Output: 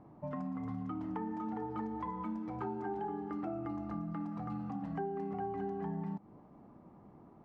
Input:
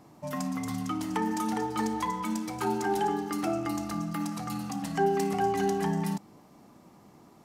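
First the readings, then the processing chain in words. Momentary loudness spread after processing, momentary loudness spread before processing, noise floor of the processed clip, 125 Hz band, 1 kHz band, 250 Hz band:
19 LU, 7 LU, -59 dBFS, -6.5 dB, -10.5 dB, -7.5 dB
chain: low-pass 1.2 kHz 12 dB/octave; bass shelf 80 Hz +7.5 dB; compression 4:1, threshold -34 dBFS, peak gain reduction 11.5 dB; trim -2.5 dB

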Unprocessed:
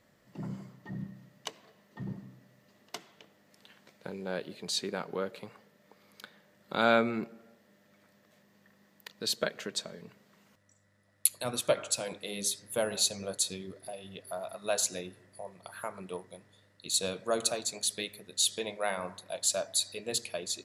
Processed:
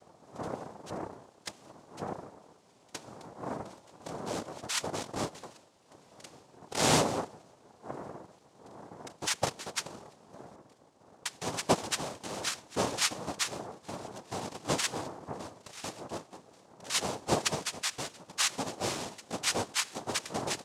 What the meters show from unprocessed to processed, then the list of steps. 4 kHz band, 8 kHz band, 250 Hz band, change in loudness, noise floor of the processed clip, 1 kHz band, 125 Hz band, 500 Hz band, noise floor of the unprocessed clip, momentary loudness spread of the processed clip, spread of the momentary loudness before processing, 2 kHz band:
-0.5 dB, -2.0 dB, +1.0 dB, -1.0 dB, -62 dBFS, +3.5 dB, +4.0 dB, -2.0 dB, -66 dBFS, 21 LU, 18 LU, +1.0 dB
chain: wind noise 140 Hz -46 dBFS; noise-vocoded speech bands 2

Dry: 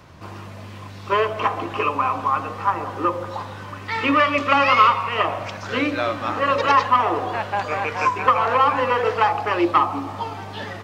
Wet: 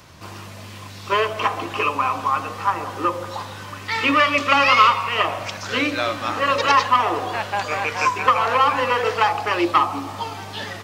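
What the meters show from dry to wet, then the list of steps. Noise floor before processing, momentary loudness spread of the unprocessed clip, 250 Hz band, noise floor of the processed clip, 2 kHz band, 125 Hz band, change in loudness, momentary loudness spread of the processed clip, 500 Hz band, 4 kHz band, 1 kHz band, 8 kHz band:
-37 dBFS, 16 LU, -1.5 dB, -37 dBFS, +2.5 dB, -1.5 dB, +0.5 dB, 16 LU, -1.0 dB, +5.0 dB, 0.0 dB, no reading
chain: treble shelf 2.9 kHz +12 dB; trim -1.5 dB

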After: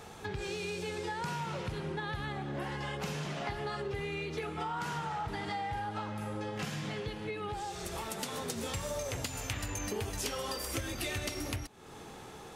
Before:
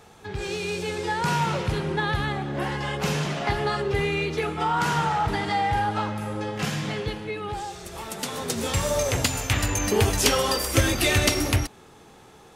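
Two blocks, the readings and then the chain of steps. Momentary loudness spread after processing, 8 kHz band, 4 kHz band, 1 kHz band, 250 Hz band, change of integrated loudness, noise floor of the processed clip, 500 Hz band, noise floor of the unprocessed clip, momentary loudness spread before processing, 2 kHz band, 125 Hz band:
3 LU, -12.5 dB, -12.5 dB, -12.0 dB, -11.5 dB, -12.0 dB, -49 dBFS, -11.5 dB, -50 dBFS, 11 LU, -12.0 dB, -12.5 dB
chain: compression 5:1, threshold -38 dBFS, peak gain reduction 20.5 dB; trim +2 dB

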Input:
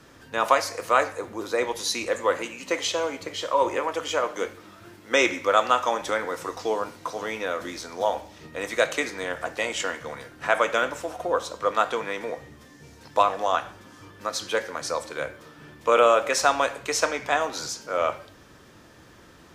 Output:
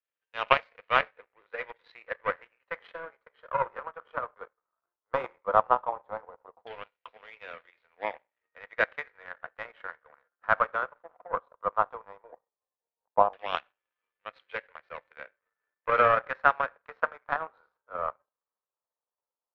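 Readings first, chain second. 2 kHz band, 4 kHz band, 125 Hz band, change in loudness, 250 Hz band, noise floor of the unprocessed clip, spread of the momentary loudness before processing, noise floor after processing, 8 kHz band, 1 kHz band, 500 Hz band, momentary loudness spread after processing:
-4.5 dB, -12.5 dB, -4.5 dB, -4.5 dB, -15.0 dB, -51 dBFS, 12 LU, under -85 dBFS, under -40 dB, -4.0 dB, -8.5 dB, 20 LU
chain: elliptic band-pass 470–4000 Hz; power-law waveshaper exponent 2; LFO low-pass saw down 0.15 Hz 810–2800 Hz; trim +1.5 dB

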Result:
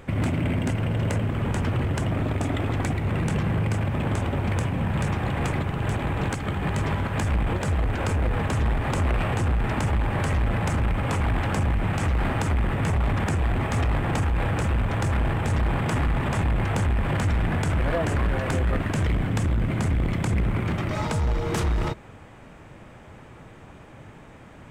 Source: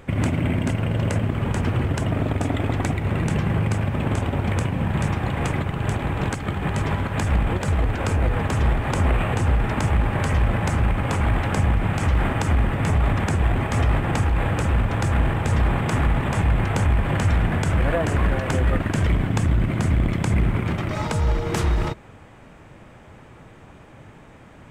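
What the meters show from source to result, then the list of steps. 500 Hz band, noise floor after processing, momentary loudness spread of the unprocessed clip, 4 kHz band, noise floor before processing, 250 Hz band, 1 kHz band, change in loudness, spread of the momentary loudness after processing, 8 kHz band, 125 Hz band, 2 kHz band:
-2.5 dB, -46 dBFS, 3 LU, -2.0 dB, -46 dBFS, -2.5 dB, -2.5 dB, -3.0 dB, 2 LU, -2.5 dB, -3.0 dB, -2.5 dB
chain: saturation -18 dBFS, distortion -14 dB

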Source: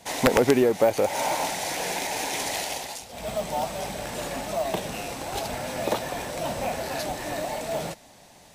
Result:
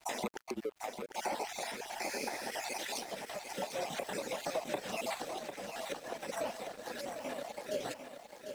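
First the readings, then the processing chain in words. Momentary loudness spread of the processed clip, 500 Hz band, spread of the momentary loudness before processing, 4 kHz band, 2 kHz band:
5 LU, -13.5 dB, 11 LU, -10.5 dB, -10.0 dB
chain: random holes in the spectrogram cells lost 38%; reverb removal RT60 0.66 s; high-pass 250 Hz 24 dB/octave; spectral replace 2.09–2.53 s, 2.3–12 kHz; treble shelf 9.7 kHz -9 dB; compression 12:1, threshold -38 dBFS, peak gain reduction 21.5 dB; random-step tremolo 3.5 Hz; frequency shift -43 Hz; crossover distortion -55.5 dBFS; bit-crushed delay 748 ms, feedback 55%, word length 11-bit, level -8 dB; trim +6.5 dB

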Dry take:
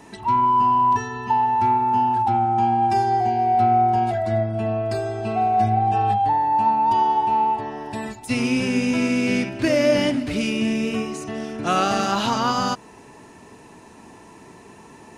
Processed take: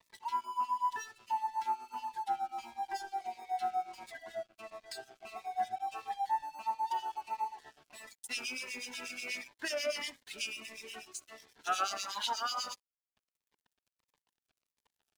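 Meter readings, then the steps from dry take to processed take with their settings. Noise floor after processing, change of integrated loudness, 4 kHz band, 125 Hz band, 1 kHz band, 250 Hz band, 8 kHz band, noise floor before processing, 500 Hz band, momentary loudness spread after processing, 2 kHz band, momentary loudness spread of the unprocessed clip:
under -85 dBFS, -17.0 dB, -9.0 dB, under -40 dB, -17.5 dB, -33.5 dB, -7.5 dB, -46 dBFS, -20.5 dB, 12 LU, -12.0 dB, 8 LU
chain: high-pass 1.1 kHz 12 dB/octave; reverb removal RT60 1.2 s; band-stop 2.8 kHz, Q 27; harmonic tremolo 8.2 Hz, depth 100%, crossover 2.1 kHz; on a send: filtered feedback delay 65 ms, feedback 29%, low-pass 3.4 kHz, level -20 dB; on the sum: crossover distortion -53 dBFS; Shepard-style phaser falling 1.5 Hz

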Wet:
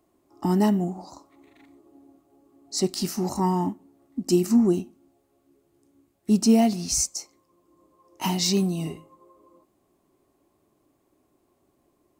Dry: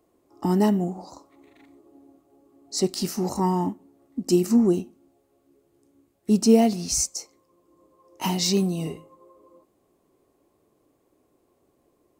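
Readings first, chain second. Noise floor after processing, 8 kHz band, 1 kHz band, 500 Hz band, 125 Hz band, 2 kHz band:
-69 dBFS, 0.0 dB, -0.5 dB, -2.5 dB, 0.0 dB, 0.0 dB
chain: peaking EQ 480 Hz -10.5 dB 0.25 oct

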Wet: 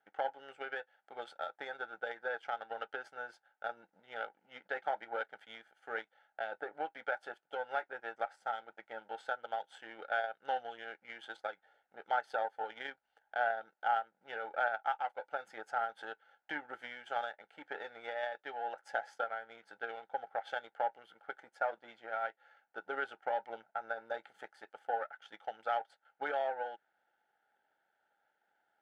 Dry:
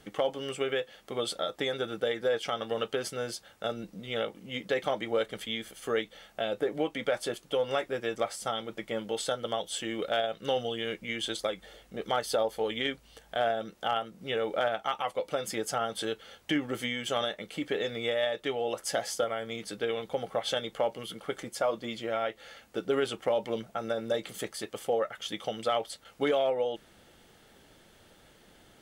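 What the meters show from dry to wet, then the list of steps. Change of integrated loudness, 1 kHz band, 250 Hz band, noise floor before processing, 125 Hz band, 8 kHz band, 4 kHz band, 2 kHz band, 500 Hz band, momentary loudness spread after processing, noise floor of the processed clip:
-7.5 dB, -1.5 dB, -21.0 dB, -60 dBFS, under -25 dB, under -25 dB, -18.0 dB, -2.0 dB, -11.5 dB, 13 LU, -82 dBFS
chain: power-law waveshaper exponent 1.4; two resonant band-passes 1.1 kHz, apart 0.81 oct; trim +5 dB

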